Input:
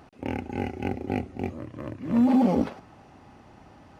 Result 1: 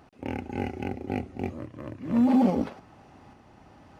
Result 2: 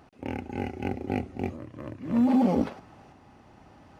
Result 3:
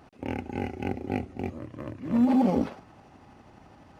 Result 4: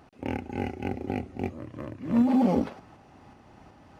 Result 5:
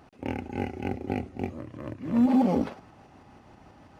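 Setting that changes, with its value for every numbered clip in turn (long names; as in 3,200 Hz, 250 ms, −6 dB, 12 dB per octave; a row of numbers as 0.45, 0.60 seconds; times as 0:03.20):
shaped tremolo, speed: 1.2, 0.64, 12, 2.7, 6.2 Hertz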